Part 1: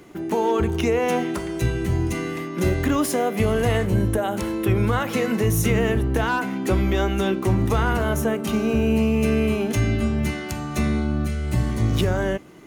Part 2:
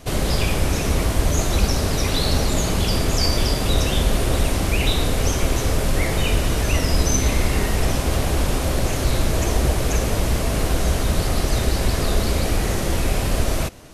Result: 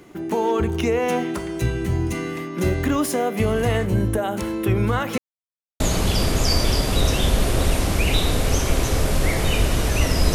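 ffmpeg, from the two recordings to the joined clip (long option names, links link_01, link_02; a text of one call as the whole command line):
ffmpeg -i cue0.wav -i cue1.wav -filter_complex "[0:a]apad=whole_dur=10.34,atrim=end=10.34,asplit=2[link_01][link_02];[link_01]atrim=end=5.18,asetpts=PTS-STARTPTS,afade=type=out:start_time=5.176:duration=0.004:curve=hsin[link_03];[link_02]atrim=start=5.18:end=5.8,asetpts=PTS-STARTPTS,volume=0[link_04];[1:a]atrim=start=2.53:end=7.07,asetpts=PTS-STARTPTS,afade=type=in:duration=0.004:curve=hsin[link_05];[link_03][link_04][link_05]concat=n=3:v=0:a=1" out.wav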